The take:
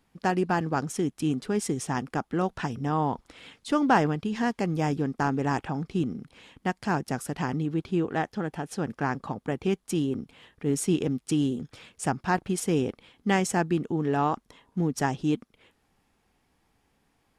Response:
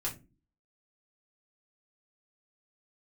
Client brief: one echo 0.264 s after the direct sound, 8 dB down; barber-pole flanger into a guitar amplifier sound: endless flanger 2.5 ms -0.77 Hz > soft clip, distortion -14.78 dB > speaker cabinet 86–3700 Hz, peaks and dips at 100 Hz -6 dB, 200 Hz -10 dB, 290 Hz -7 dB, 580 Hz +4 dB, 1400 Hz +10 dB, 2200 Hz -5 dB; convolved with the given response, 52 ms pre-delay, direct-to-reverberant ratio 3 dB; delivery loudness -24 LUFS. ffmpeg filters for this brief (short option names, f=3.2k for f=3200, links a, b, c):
-filter_complex "[0:a]aecho=1:1:264:0.398,asplit=2[a][b];[1:a]atrim=start_sample=2205,adelay=52[c];[b][c]afir=irnorm=-1:irlink=0,volume=-5.5dB[d];[a][d]amix=inputs=2:normalize=0,asplit=2[e][f];[f]adelay=2.5,afreqshift=-0.77[g];[e][g]amix=inputs=2:normalize=1,asoftclip=threshold=-22.5dB,highpass=86,equalizer=f=100:t=q:w=4:g=-6,equalizer=f=200:t=q:w=4:g=-10,equalizer=f=290:t=q:w=4:g=-7,equalizer=f=580:t=q:w=4:g=4,equalizer=f=1.4k:t=q:w=4:g=10,equalizer=f=2.2k:t=q:w=4:g=-5,lowpass=f=3.7k:w=0.5412,lowpass=f=3.7k:w=1.3066,volume=8.5dB"